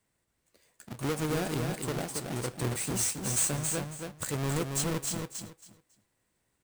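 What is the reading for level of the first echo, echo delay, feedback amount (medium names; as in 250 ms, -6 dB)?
-5.0 dB, 275 ms, 21%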